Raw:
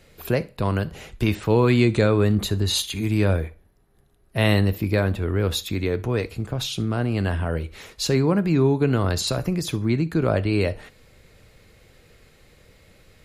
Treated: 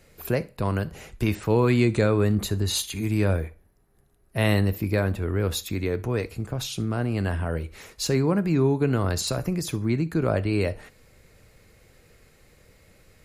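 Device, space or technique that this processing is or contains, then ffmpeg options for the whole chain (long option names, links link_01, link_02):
exciter from parts: -filter_complex "[0:a]asplit=2[link_01][link_02];[link_02]highpass=frequency=3200:width=0.5412,highpass=frequency=3200:width=1.3066,asoftclip=type=tanh:threshold=-19dB,volume=-6dB[link_03];[link_01][link_03]amix=inputs=2:normalize=0,volume=-2.5dB"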